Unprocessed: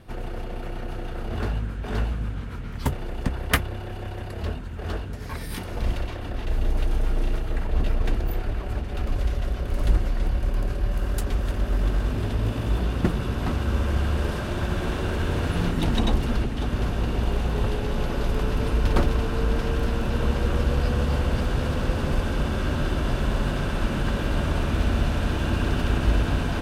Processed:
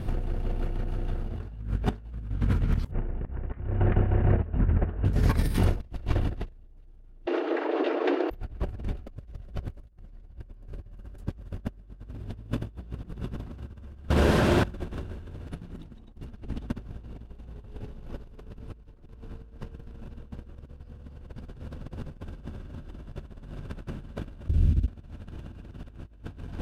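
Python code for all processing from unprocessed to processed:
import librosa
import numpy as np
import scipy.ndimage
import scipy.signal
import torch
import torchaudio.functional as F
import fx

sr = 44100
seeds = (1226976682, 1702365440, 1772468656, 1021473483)

y = fx.chain(x, sr, fx.cheby2_lowpass(hz=5700.0, order=4, stop_db=50),
    fx.echo_single(ms=385, db=-17.5), at=(2.91, 5.05))
y = fx.chain(y, sr, fx.brickwall_highpass(low_hz=280.0),
    fx.air_absorb(metres=230.0), at=(7.26, 8.31))
y = fx.chain(y, sr, fx.highpass(hz=330.0, slope=6),
    fx.notch(hz=1200.0, q=18.0),
    fx.doppler_dist(depth_ms=0.34), at=(14.09, 14.65))
y = fx.chain(y, sr, fx.highpass(hz=53.0, slope=12),
    fx.tone_stack(knobs='10-0-1'), at=(24.48, 24.88))
y = fx.low_shelf(y, sr, hz=390.0, db=11.0)
y = fx.over_compress(y, sr, threshold_db=-25.0, ratio=-0.5)
y = F.gain(torch.from_numpy(y), -5.0).numpy()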